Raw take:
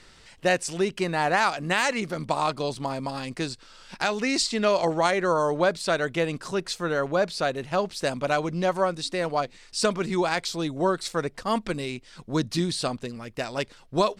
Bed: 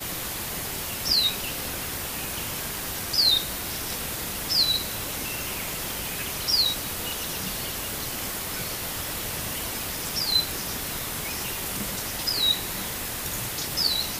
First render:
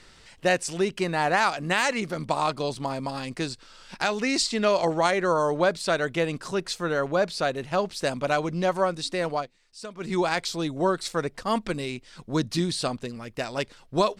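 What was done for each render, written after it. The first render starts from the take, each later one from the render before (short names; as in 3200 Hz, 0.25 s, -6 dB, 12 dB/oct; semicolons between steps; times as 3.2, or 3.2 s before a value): 9.32–10.14 dip -15.5 dB, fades 0.19 s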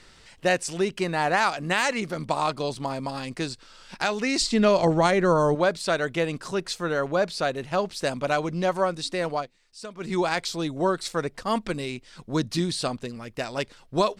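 4.41–5.55 low shelf 270 Hz +11.5 dB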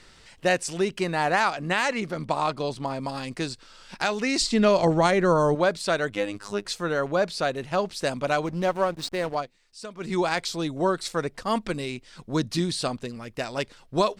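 1.42–3.01 high shelf 5400 Hz -6.5 dB; 6.1–6.65 robotiser 102 Hz; 8.46–9.35 backlash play -32 dBFS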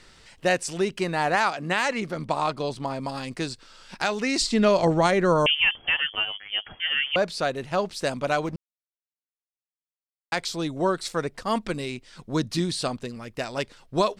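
1.35–1.86 HPF 110 Hz; 5.46–7.16 inverted band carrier 3300 Hz; 8.56–10.32 mute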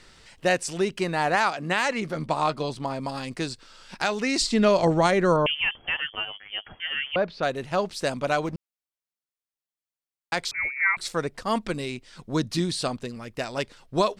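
2.04–2.71 doubler 13 ms -10.5 dB; 5.36–7.43 air absorption 290 m; 10.51–10.97 inverted band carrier 2500 Hz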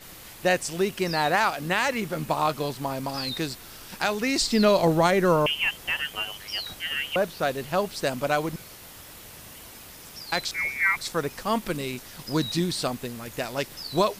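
add bed -13.5 dB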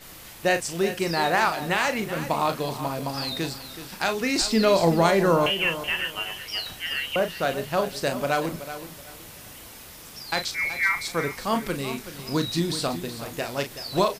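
doubler 36 ms -8.5 dB; feedback echo 0.376 s, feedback 25%, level -12 dB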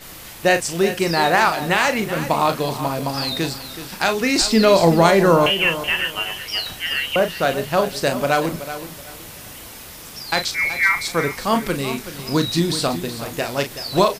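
gain +6 dB; limiter -2 dBFS, peak gain reduction 1 dB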